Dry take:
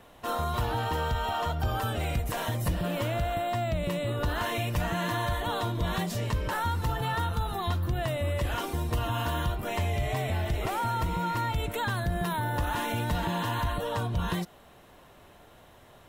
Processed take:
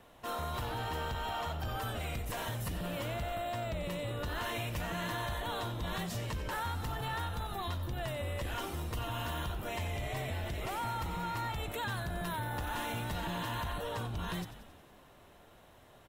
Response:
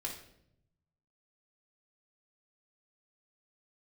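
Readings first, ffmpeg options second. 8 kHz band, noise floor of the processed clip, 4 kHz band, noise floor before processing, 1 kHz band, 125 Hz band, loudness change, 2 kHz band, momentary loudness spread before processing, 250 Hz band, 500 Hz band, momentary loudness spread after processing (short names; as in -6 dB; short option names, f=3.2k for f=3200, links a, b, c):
-4.5 dB, -59 dBFS, -4.5 dB, -54 dBFS, -7.0 dB, -8.5 dB, -7.0 dB, -5.5 dB, 1 LU, -8.0 dB, -7.5 dB, 2 LU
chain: -filter_complex "[0:a]acrossover=split=1500[a][b];[a]asoftclip=type=tanh:threshold=-28.5dB[c];[c][b]amix=inputs=2:normalize=0,asplit=8[d][e][f][g][h][i][j][k];[e]adelay=91,afreqshift=-64,volume=-12.5dB[l];[f]adelay=182,afreqshift=-128,volume=-16.5dB[m];[g]adelay=273,afreqshift=-192,volume=-20.5dB[n];[h]adelay=364,afreqshift=-256,volume=-24.5dB[o];[i]adelay=455,afreqshift=-320,volume=-28.6dB[p];[j]adelay=546,afreqshift=-384,volume=-32.6dB[q];[k]adelay=637,afreqshift=-448,volume=-36.6dB[r];[d][l][m][n][o][p][q][r]amix=inputs=8:normalize=0,volume=-5dB"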